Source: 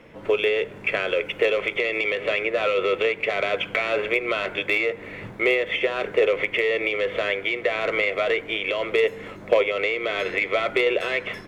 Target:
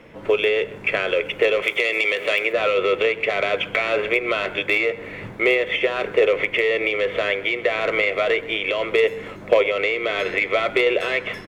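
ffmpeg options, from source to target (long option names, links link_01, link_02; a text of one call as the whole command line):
ffmpeg -i in.wav -filter_complex "[0:a]asettb=1/sr,asplit=3[link_01][link_02][link_03];[link_01]atrim=end=1.624[link_04];[link_02]atrim=start=1.62:end=2.53,asetpts=PTS-STARTPTS,afade=type=in:duration=0.004:curve=qsin,afade=type=out:start_time=0.906:duration=0.004:curve=qsin,aemphasis=mode=production:type=bsi[link_05];[link_03]atrim=start=2.526[link_06];[link_04][link_05]acrossfade=duration=0.004:curve1=hsin:curve2=qsin[link_07];[link_07][link_06]acrossfade=duration=0.004:curve1=qsin:curve2=hsin,asplit=2[link_08][link_09];[link_09]adelay=128.3,volume=-20dB,highshelf=frequency=4000:gain=-2.89[link_10];[link_08][link_10]amix=inputs=2:normalize=0,volume=2.5dB" out.wav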